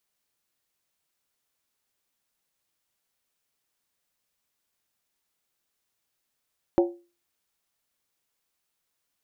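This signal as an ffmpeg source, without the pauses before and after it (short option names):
-f lavfi -i "aevalsrc='0.2*pow(10,-3*t/0.33)*sin(2*PI*347*t)+0.1*pow(10,-3*t/0.261)*sin(2*PI*553.1*t)+0.0501*pow(10,-3*t/0.226)*sin(2*PI*741.2*t)+0.0251*pow(10,-3*t/0.218)*sin(2*PI*796.7*t)+0.0126*pow(10,-3*t/0.203)*sin(2*PI*920.6*t)':d=0.63:s=44100"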